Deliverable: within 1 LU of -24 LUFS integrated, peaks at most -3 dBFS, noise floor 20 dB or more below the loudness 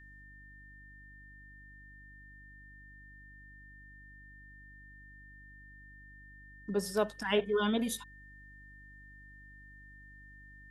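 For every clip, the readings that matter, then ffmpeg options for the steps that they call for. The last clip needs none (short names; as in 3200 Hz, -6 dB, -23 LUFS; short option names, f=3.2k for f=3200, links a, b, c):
hum 50 Hz; harmonics up to 300 Hz; hum level -55 dBFS; steady tone 1800 Hz; tone level -54 dBFS; loudness -33.0 LUFS; peak -15.5 dBFS; loudness target -24.0 LUFS
-> -af "bandreject=f=50:t=h:w=4,bandreject=f=100:t=h:w=4,bandreject=f=150:t=h:w=4,bandreject=f=200:t=h:w=4,bandreject=f=250:t=h:w=4,bandreject=f=300:t=h:w=4"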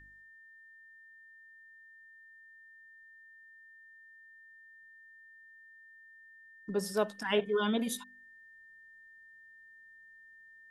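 hum none; steady tone 1800 Hz; tone level -54 dBFS
-> -af "bandreject=f=1.8k:w=30"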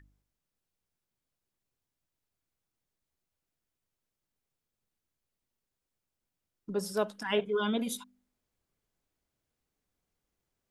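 steady tone none; loudness -32.5 LUFS; peak -15.5 dBFS; loudness target -24.0 LUFS
-> -af "volume=8.5dB"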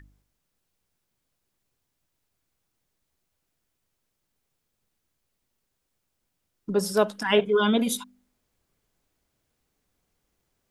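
loudness -24.0 LUFS; peak -7.0 dBFS; noise floor -79 dBFS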